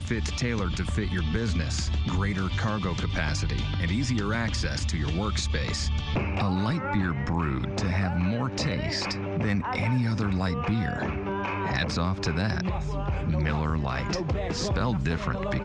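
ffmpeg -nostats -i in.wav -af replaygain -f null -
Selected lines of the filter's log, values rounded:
track_gain = +11.6 dB
track_peak = 0.134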